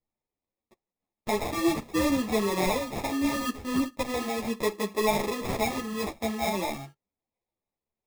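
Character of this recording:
aliases and images of a low sample rate 1,500 Hz, jitter 0%
a shimmering, thickened sound

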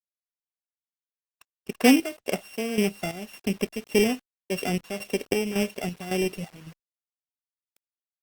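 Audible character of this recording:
a buzz of ramps at a fixed pitch in blocks of 16 samples
chopped level 1.8 Hz, depth 65%, duty 60%
a quantiser's noise floor 8 bits, dither none
Opus

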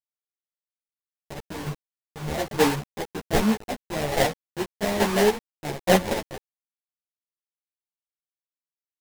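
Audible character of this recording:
aliases and images of a low sample rate 1,300 Hz, jitter 20%
chopped level 1.2 Hz, depth 65%, duty 35%
a quantiser's noise floor 6 bits, dither none
a shimmering, thickened sound

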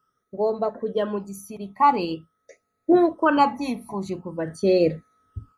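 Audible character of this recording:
phaser sweep stages 12, 0.46 Hz, lowest notch 500–1,000 Hz

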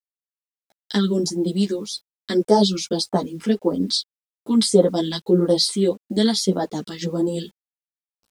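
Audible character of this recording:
phaser sweep stages 2, 1.7 Hz, lowest notch 560–2,500 Hz
a quantiser's noise floor 10 bits, dither none
a shimmering, thickened sound

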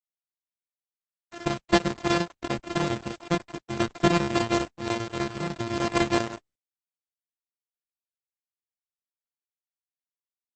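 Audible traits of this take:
a buzz of ramps at a fixed pitch in blocks of 128 samples
chopped level 10 Hz, depth 65%, duty 80%
a quantiser's noise floor 8 bits, dither none
Opus

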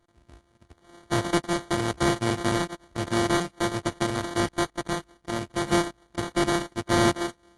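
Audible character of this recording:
a buzz of ramps at a fixed pitch in blocks of 128 samples
sample-and-hold tremolo
aliases and images of a low sample rate 2,600 Hz, jitter 0%
AAC

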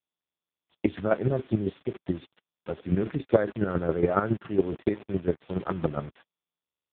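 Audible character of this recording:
chopped level 7.2 Hz, depth 65%, duty 20%
a quantiser's noise floor 8 bits, dither none
AMR narrowband

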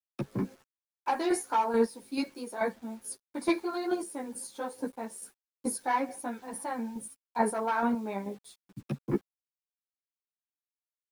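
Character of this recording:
chopped level 2.3 Hz, depth 60%, duty 25%
a quantiser's noise floor 10 bits, dither none
a shimmering, thickened sound

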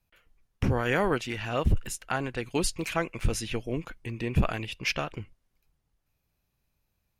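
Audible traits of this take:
background noise floor −78 dBFS
spectral slope −5.0 dB per octave

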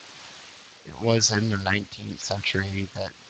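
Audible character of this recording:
phaser sweep stages 4, 2.9 Hz, lowest notch 300–1,600 Hz
a quantiser's noise floor 8 bits, dither triangular
tremolo triangle 0.89 Hz, depth 65%
Speex

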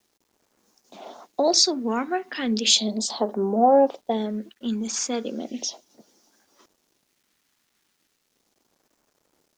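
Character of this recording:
phaser sweep stages 2, 0.36 Hz, lowest notch 580–2,500 Hz
a quantiser's noise floor 12 bits, dither none

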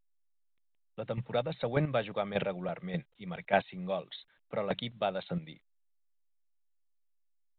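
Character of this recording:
a quantiser's noise floor 12 bits, dither none
chopped level 1.7 Hz, depth 65%, duty 15%
A-law companding

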